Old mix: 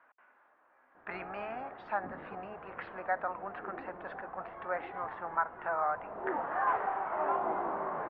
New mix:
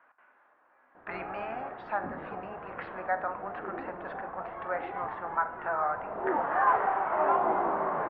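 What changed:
background +5.0 dB; reverb: on, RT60 0.65 s

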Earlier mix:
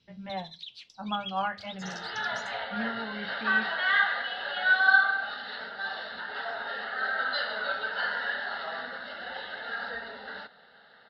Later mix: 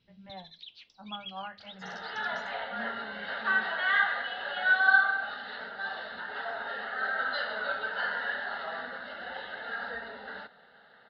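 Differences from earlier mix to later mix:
speech -9.5 dB; master: add air absorption 180 m

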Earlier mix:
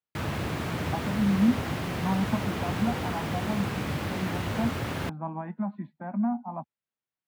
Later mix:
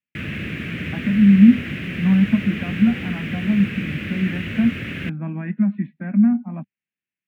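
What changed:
speech +6.5 dB; master: add EQ curve 120 Hz 0 dB, 200 Hz +7 dB, 580 Hz -6 dB, 890 Hz -19 dB, 1700 Hz +6 dB, 2600 Hz +11 dB, 4400 Hz -9 dB

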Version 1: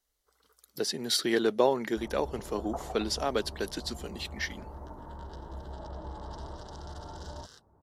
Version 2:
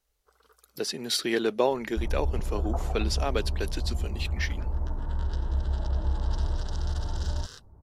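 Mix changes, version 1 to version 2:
first sound +7.5 dB; second sound: remove HPF 370 Hz 6 dB/oct; master: add bell 2500 Hz +8 dB 0.25 oct

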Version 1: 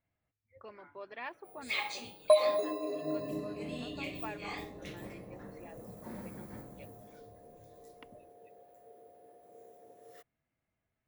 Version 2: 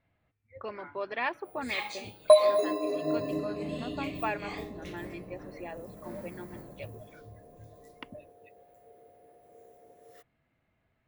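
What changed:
speech +11.0 dB; second sound +5.5 dB

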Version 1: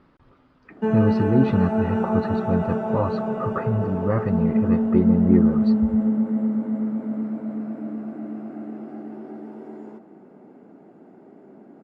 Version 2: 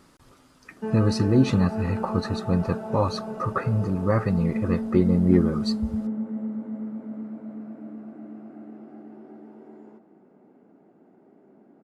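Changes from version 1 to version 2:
speech: remove air absorption 380 m; background -8.0 dB

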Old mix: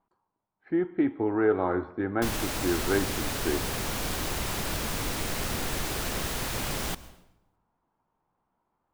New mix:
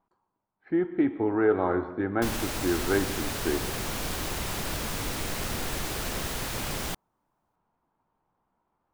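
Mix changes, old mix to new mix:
speech: send +9.5 dB; background: send off

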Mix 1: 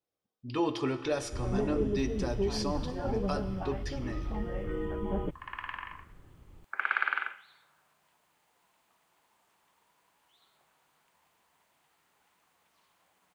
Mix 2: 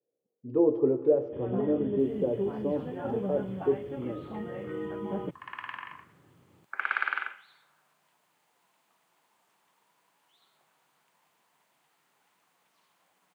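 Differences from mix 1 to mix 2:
speech: add synth low-pass 480 Hz, resonance Q 4.2; master: add HPF 120 Hz 24 dB/oct

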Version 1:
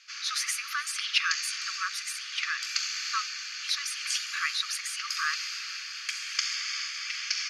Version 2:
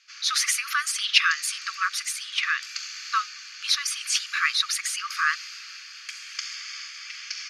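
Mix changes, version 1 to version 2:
speech +7.0 dB; background -4.0 dB

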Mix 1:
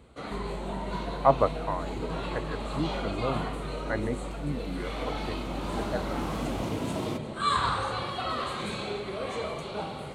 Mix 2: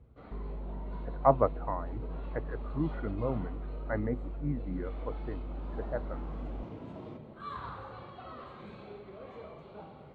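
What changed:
first sound -11.0 dB; second sound -12.0 dB; master: add tape spacing loss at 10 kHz 35 dB

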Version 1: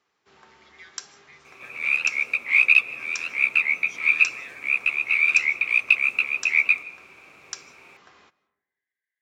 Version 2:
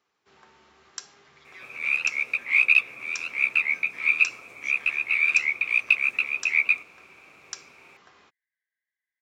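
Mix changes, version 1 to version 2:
speech: entry +0.75 s; reverb: off

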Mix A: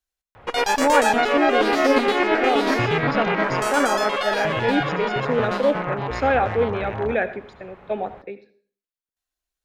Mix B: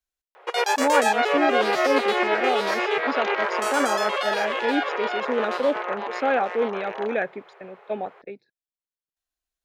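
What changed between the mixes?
first sound: add brick-wall FIR high-pass 340 Hz; second sound +6.0 dB; reverb: off

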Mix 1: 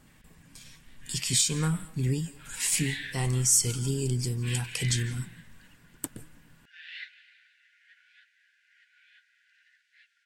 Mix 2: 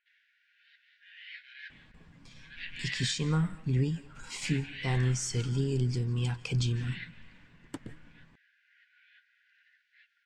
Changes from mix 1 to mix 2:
speech: entry +1.70 s; master: add air absorption 160 m

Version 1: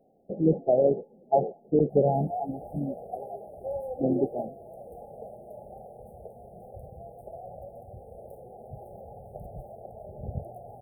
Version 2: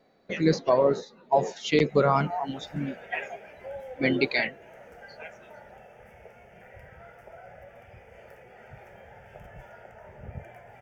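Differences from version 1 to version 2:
background -5.5 dB; master: remove brick-wall FIR band-stop 850–8300 Hz

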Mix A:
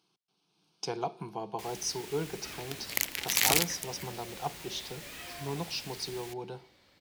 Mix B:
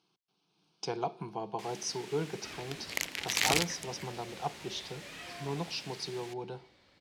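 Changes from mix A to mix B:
first sound: add HPF 120 Hz 24 dB/oct; master: add air absorption 51 m

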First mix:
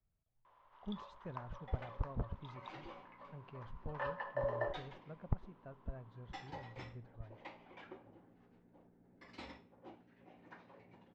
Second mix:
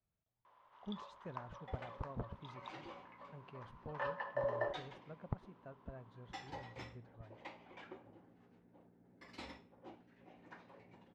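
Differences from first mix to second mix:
speech: add HPF 140 Hz 6 dB/oct; master: remove air absorption 64 m

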